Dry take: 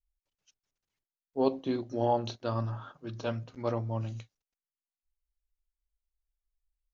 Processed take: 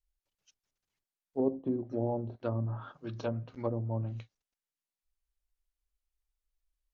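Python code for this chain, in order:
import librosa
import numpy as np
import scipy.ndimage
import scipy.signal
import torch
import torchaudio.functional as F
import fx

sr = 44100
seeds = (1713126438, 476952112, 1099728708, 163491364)

y = fx.env_lowpass_down(x, sr, base_hz=430.0, full_db=-27.0)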